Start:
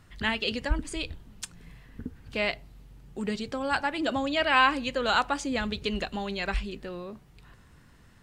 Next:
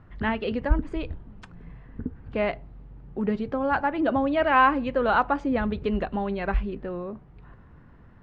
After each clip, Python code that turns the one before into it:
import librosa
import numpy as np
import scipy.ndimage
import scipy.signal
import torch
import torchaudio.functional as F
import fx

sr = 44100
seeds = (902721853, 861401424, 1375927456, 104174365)

y = scipy.signal.sosfilt(scipy.signal.butter(2, 1300.0, 'lowpass', fs=sr, output='sos'), x)
y = F.gain(torch.from_numpy(y), 5.5).numpy()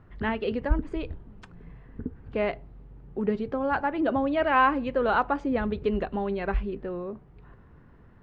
y = fx.peak_eq(x, sr, hz=410.0, db=4.5, octaves=0.47)
y = F.gain(torch.from_numpy(y), -2.5).numpy()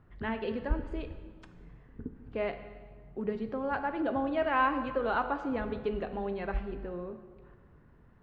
y = fx.rev_plate(x, sr, seeds[0], rt60_s=1.6, hf_ratio=0.8, predelay_ms=0, drr_db=8.0)
y = F.gain(torch.from_numpy(y), -6.5).numpy()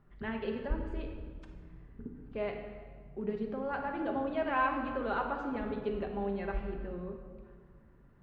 y = fx.room_shoebox(x, sr, seeds[1], volume_m3=1500.0, walls='mixed', distance_m=1.2)
y = F.gain(torch.from_numpy(y), -4.5).numpy()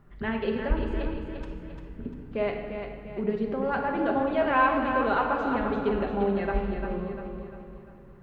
y = fx.echo_feedback(x, sr, ms=347, feedback_pct=44, wet_db=-7.0)
y = F.gain(torch.from_numpy(y), 7.5).numpy()